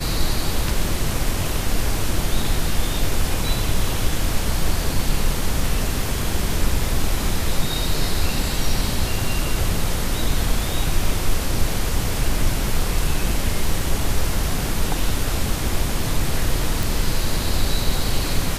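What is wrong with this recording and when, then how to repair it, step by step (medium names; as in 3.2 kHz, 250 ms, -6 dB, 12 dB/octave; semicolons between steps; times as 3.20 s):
16.83 s: pop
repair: de-click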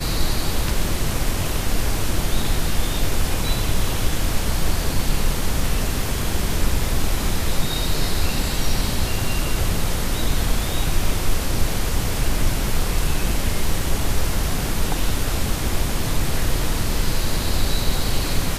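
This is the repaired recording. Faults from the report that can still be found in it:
nothing left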